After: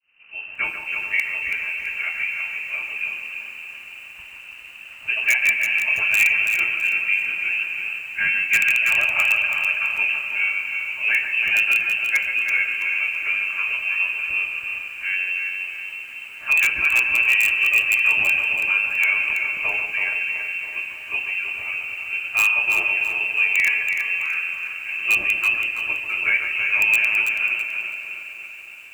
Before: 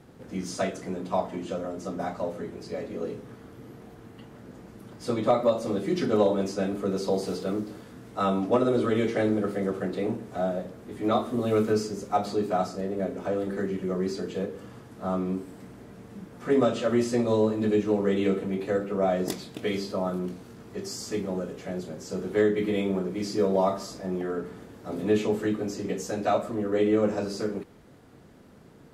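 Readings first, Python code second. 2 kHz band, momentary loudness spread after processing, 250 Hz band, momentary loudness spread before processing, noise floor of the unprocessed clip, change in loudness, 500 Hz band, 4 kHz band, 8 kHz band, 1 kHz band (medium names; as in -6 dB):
+25.0 dB, 15 LU, under -20 dB, 18 LU, -50 dBFS, +9.0 dB, -20.0 dB, +11.0 dB, +7.0 dB, -5.0 dB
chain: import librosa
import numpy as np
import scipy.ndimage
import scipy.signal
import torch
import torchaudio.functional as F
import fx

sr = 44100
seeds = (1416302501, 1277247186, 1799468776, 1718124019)

p1 = fx.fade_in_head(x, sr, length_s=0.7)
p2 = fx.freq_invert(p1, sr, carrier_hz=2900)
p3 = fx.echo_alternate(p2, sr, ms=141, hz=2300.0, feedback_pct=81, wet_db=-7.5)
p4 = (np.mod(10.0 ** (13.0 / 20.0) * p3 + 1.0, 2.0) - 1.0) / 10.0 ** (13.0 / 20.0)
p5 = p3 + F.gain(torch.from_numpy(p4), -5.0).numpy()
y = fx.echo_crushed(p5, sr, ms=329, feedback_pct=35, bits=8, wet_db=-6.5)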